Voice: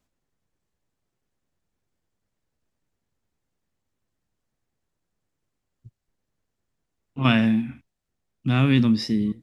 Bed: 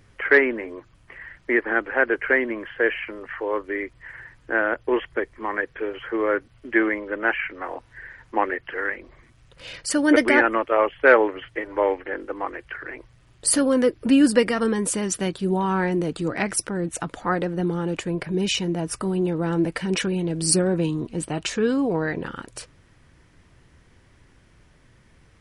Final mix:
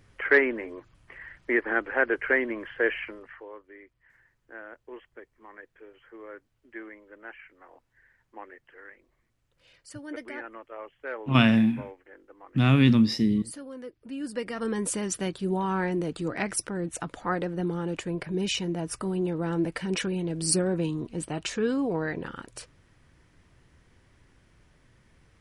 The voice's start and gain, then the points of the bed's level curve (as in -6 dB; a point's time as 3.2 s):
4.10 s, -0.5 dB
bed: 3.05 s -4 dB
3.61 s -21.5 dB
14.09 s -21.5 dB
14.78 s -5 dB